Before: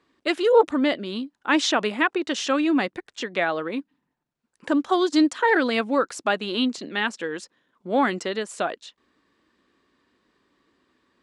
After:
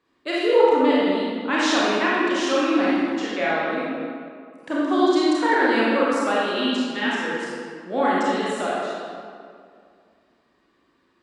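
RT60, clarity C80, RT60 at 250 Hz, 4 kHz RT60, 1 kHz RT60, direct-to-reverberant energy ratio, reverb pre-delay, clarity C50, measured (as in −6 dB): 2.3 s, −1.5 dB, 2.4 s, 1.4 s, 2.2 s, −7.5 dB, 27 ms, −4.0 dB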